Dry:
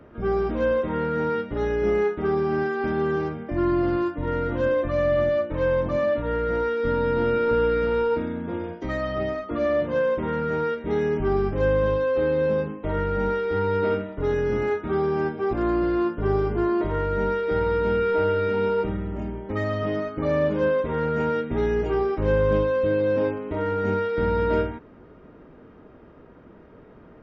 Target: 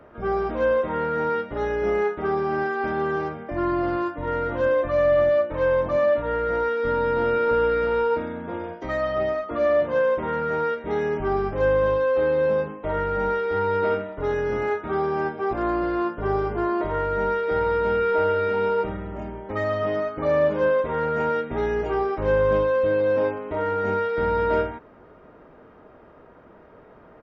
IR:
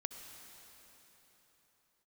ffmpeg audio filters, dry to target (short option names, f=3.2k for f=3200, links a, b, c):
-af "firequalizer=gain_entry='entry(270,0);entry(640,9);entry(2900,4)':delay=0.05:min_phase=1,volume=-4.5dB"